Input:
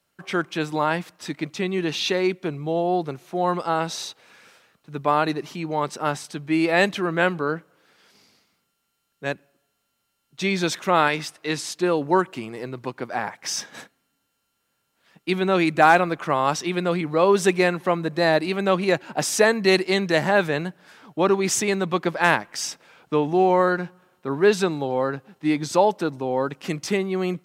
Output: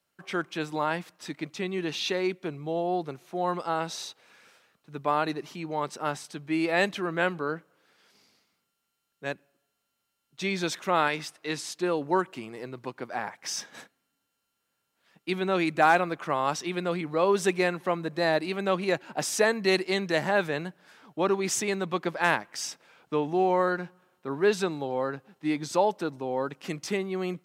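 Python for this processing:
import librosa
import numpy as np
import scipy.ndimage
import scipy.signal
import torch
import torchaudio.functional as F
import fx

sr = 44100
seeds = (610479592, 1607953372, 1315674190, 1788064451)

y = fx.low_shelf(x, sr, hz=130.0, db=-5.0)
y = y * librosa.db_to_amplitude(-5.5)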